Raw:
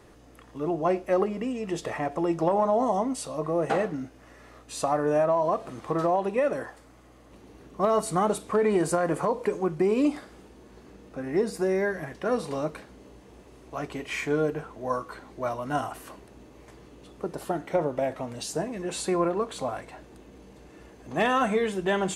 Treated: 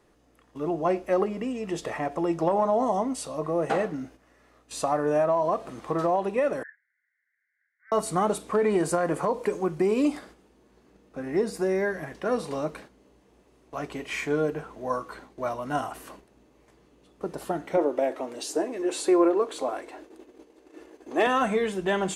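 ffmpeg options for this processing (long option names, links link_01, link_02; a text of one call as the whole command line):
ffmpeg -i in.wav -filter_complex "[0:a]asettb=1/sr,asplit=3[link_01][link_02][link_03];[link_01]atrim=end=6.634[link_04];[link_02]atrim=start=6.63:end=7.92,asetpts=PTS-STARTPTS,afade=type=in:duration=0.004:curve=qsin,afade=type=out:start_time=1.286:duration=0.004:curve=qsin,asuperpass=centerf=1800:order=12:qfactor=2.6[link_05];[link_03]atrim=start=7.916[link_06];[link_04][link_05]acrossfade=duration=0.004:curve1=hsin:curve2=qsin[link_07];[link_07][link_06]acrossfade=duration=0.004:curve1=qsin:curve2=hsin,asettb=1/sr,asplit=3[link_08][link_09][link_10];[link_08]atrim=end=9.344[link_11];[link_09]atrim=start=9.34:end=10.19,asetpts=PTS-STARTPTS,afade=type=in:duration=0.004:curve=qsin,afade=type=out:start_time=0.846:duration=0.004:curve=qsin,highshelf=frequency=5200:gain=4.5[link_12];[link_10]atrim=start=10.186[link_13];[link_11][link_12]acrossfade=duration=0.004:curve1=hsin:curve2=qsin[link_14];[link_14][link_13]acrossfade=duration=0.004:curve1=qsin:curve2=hsin,asettb=1/sr,asplit=3[link_15][link_16][link_17];[link_15]atrim=end=17.774[link_18];[link_16]atrim=start=17.77:end=21.27,asetpts=PTS-STARTPTS,afade=type=in:duration=0.004:curve=qsin,afade=type=out:start_time=3.496:duration=0.004:curve=qsin,lowshelf=frequency=230:width_type=q:width=3:gain=-11.5[link_19];[link_17]atrim=start=21.266[link_20];[link_18][link_19]acrossfade=duration=0.004:curve1=hsin:curve2=qsin[link_21];[link_21][link_20]acrossfade=duration=0.004:curve1=qsin:curve2=hsin,agate=range=-9dB:threshold=-46dB:ratio=16:detection=peak,equalizer=frequency=89:width_type=o:width=0.48:gain=-13.5" out.wav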